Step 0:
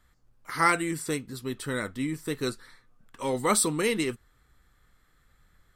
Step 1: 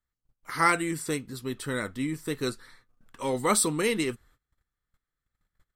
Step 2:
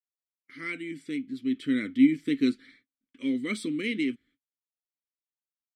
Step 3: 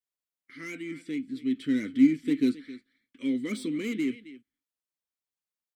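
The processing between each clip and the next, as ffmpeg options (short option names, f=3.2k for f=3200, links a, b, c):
-af "agate=range=-23dB:threshold=-57dB:ratio=16:detection=peak"
-filter_complex "[0:a]dynaudnorm=f=280:g=5:m=16dB,asplit=3[a][b][c];[a]bandpass=f=270:t=q:w=8,volume=0dB[d];[b]bandpass=f=2.29k:t=q:w=8,volume=-6dB[e];[c]bandpass=f=3.01k:t=q:w=8,volume=-9dB[f];[d][e][f]amix=inputs=3:normalize=0,agate=range=-33dB:threshold=-53dB:ratio=3:detection=peak"
-filter_complex "[0:a]aecho=1:1:266:0.119,acrossover=split=640[a][b];[b]asoftclip=type=tanh:threshold=-37dB[c];[a][c]amix=inputs=2:normalize=0"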